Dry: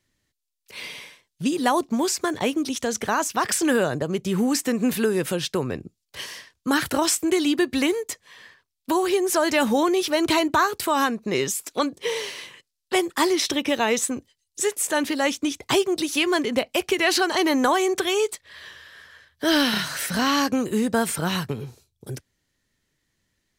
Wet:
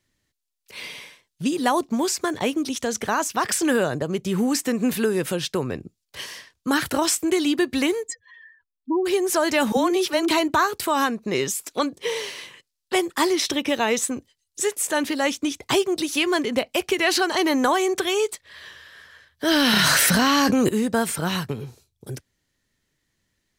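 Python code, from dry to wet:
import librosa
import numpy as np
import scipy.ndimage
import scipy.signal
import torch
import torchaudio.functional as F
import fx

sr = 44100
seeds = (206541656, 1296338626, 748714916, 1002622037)

y = fx.spec_expand(x, sr, power=3.0, at=(8.07, 9.05), fade=0.02)
y = fx.dispersion(y, sr, late='lows', ms=55.0, hz=320.0, at=(9.72, 10.31))
y = fx.env_flatten(y, sr, amount_pct=100, at=(19.51, 20.69))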